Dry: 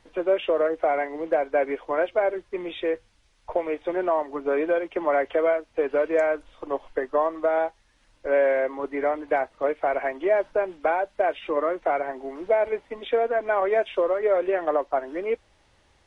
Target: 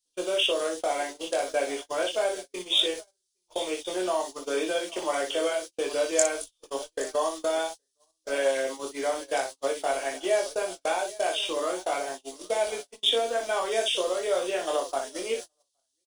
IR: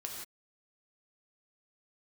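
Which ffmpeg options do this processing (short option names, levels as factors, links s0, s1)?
-filter_complex "[0:a]asplit=2[s0][s1];[s1]aecho=0:1:22|60:0.708|0.447[s2];[s0][s2]amix=inputs=2:normalize=0,aexciter=amount=7.5:drive=9.2:freq=3200,asplit=2[s3][s4];[s4]aecho=0:1:819:0.15[s5];[s3][s5]amix=inputs=2:normalize=0,crystalizer=i=3:c=0,bandreject=f=50:t=h:w=6,bandreject=f=100:t=h:w=6,bandreject=f=150:t=h:w=6,agate=range=0.0158:threshold=0.0447:ratio=16:detection=peak,volume=0.422"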